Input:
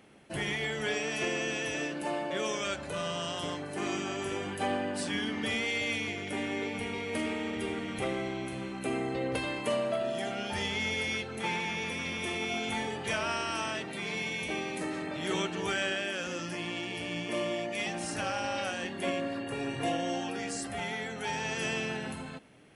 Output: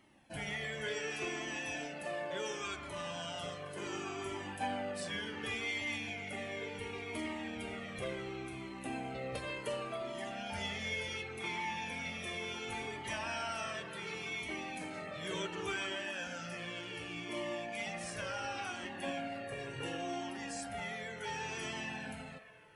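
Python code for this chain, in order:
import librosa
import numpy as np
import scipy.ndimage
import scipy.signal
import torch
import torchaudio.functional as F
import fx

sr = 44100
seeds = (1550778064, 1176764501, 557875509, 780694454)

y = fx.rattle_buzz(x, sr, strikes_db=-40.0, level_db=-39.0)
y = fx.echo_wet_bandpass(y, sr, ms=142, feedback_pct=68, hz=1200.0, wet_db=-8.0)
y = fx.comb_cascade(y, sr, direction='falling', hz=0.69)
y = y * librosa.db_to_amplitude(-2.5)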